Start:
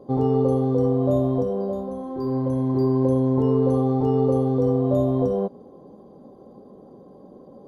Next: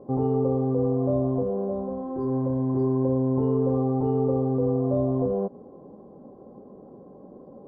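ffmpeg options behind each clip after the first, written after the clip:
-filter_complex "[0:a]lowpass=1.4k,asplit=2[a][b];[b]alimiter=limit=-21dB:level=0:latency=1:release=120,volume=-0.5dB[c];[a][c]amix=inputs=2:normalize=0,volume=-6dB"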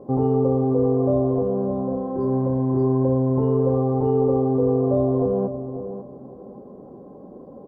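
-filter_complex "[0:a]asplit=2[a][b];[b]adelay=545,lowpass=f=1.4k:p=1,volume=-10dB,asplit=2[c][d];[d]adelay=545,lowpass=f=1.4k:p=1,volume=0.23,asplit=2[e][f];[f]adelay=545,lowpass=f=1.4k:p=1,volume=0.23[g];[a][c][e][g]amix=inputs=4:normalize=0,volume=4dB"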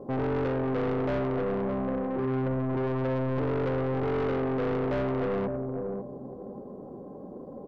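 -af "aeval=exprs='(tanh(20*val(0)+0.2)-tanh(0.2))/20':c=same"

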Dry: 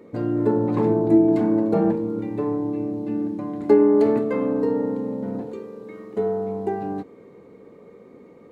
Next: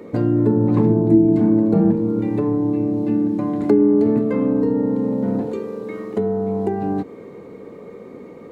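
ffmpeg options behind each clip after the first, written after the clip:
-filter_complex "[0:a]acrossover=split=280[a][b];[b]acompressor=threshold=-32dB:ratio=10[c];[a][c]amix=inputs=2:normalize=0,volume=9dB"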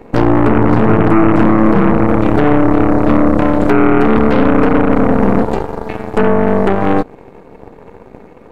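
-af "alimiter=limit=-12.5dB:level=0:latency=1:release=22,aeval=exprs='0.237*(cos(1*acos(clip(val(0)/0.237,-1,1)))-cos(1*PI/2))+0.0944*(cos(4*acos(clip(val(0)/0.237,-1,1)))-cos(4*PI/2))+0.00841*(cos(5*acos(clip(val(0)/0.237,-1,1)))-cos(5*PI/2))+0.0299*(cos(7*acos(clip(val(0)/0.237,-1,1)))-cos(7*PI/2))':c=same,volume=7.5dB"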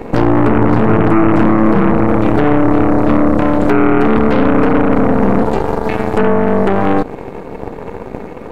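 -af "alimiter=level_in=11.5dB:limit=-1dB:release=50:level=0:latency=1,volume=-1dB"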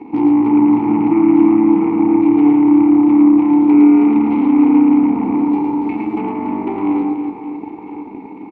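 -filter_complex "[0:a]asplit=3[a][b][c];[a]bandpass=f=300:t=q:w=8,volume=0dB[d];[b]bandpass=f=870:t=q:w=8,volume=-6dB[e];[c]bandpass=f=2.24k:t=q:w=8,volume=-9dB[f];[d][e][f]amix=inputs=3:normalize=0,aecho=1:1:110|286|567.6|1018|1739:0.631|0.398|0.251|0.158|0.1,volume=3.5dB"

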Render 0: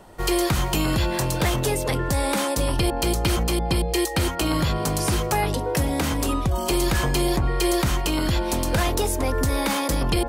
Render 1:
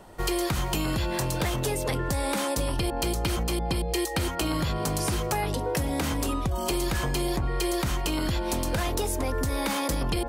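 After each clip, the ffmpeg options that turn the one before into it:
-af "acompressor=threshold=-22dB:ratio=6,volume=-1.5dB"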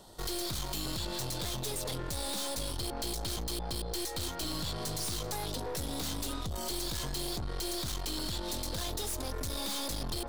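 -af "highshelf=f=3k:t=q:w=3:g=7.5,aeval=exprs='(tanh(31.6*val(0)+0.6)-tanh(0.6))/31.6':c=same,volume=-3.5dB"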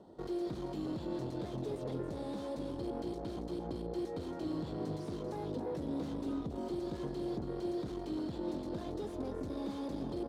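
-af "bandpass=f=300:t=q:w=1.2:csg=0,aecho=1:1:276:0.376,volume=4.5dB"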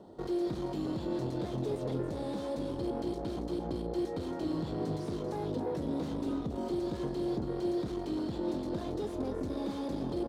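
-filter_complex "[0:a]asplit=2[a][b];[b]adelay=31,volume=-13.5dB[c];[a][c]amix=inputs=2:normalize=0,volume=4dB"

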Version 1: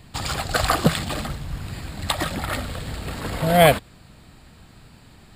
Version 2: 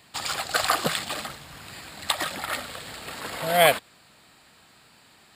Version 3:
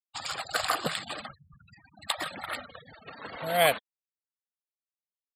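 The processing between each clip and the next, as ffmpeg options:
-af "highpass=f=840:p=1"
-af "afftfilt=real='re*gte(hypot(re,im),0.0251)':imag='im*gte(hypot(re,im),0.0251)':win_size=1024:overlap=0.75,volume=-5dB"

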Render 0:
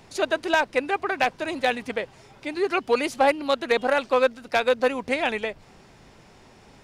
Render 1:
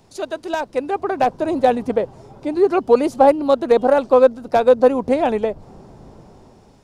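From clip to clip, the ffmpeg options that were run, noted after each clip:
-filter_complex "[0:a]equalizer=f=2.1k:w=0.91:g=-9,acrossover=split=1200[a][b];[a]dynaudnorm=f=410:g=5:m=16.5dB[c];[c][b]amix=inputs=2:normalize=0,volume=-1dB"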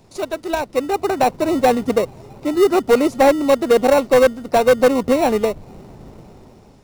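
-filter_complex "[0:a]asplit=2[a][b];[b]acrusher=samples=27:mix=1:aa=0.000001,volume=-7dB[c];[a][c]amix=inputs=2:normalize=0,asoftclip=type=hard:threshold=-7.5dB"

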